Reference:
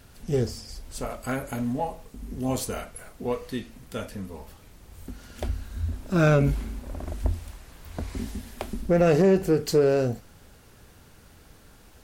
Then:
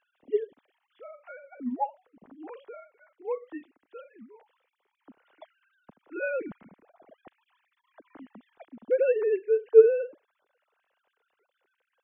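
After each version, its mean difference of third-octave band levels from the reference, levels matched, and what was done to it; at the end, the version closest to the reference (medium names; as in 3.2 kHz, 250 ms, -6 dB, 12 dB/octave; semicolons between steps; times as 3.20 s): 18.0 dB: formants replaced by sine waves; upward expansion 1.5:1, over -30 dBFS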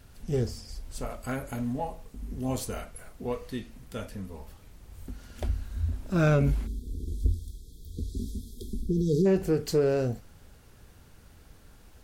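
2.5 dB: spectral selection erased 6.67–9.26 s, 480–3200 Hz; bass shelf 110 Hz +6.5 dB; trim -4.5 dB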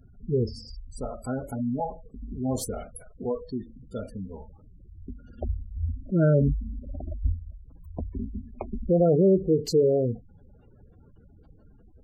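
13.5 dB: spectral gate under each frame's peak -15 dB strong; peaking EQ 1.7 kHz -8.5 dB 0.96 oct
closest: second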